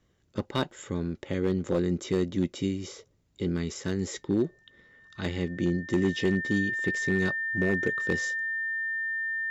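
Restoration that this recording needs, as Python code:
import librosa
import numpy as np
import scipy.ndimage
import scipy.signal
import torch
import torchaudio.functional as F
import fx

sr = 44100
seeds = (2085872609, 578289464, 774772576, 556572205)

y = fx.fix_declip(x, sr, threshold_db=-17.5)
y = fx.notch(y, sr, hz=1800.0, q=30.0)
y = fx.fix_interpolate(y, sr, at_s=(0.71,), length_ms=3.1)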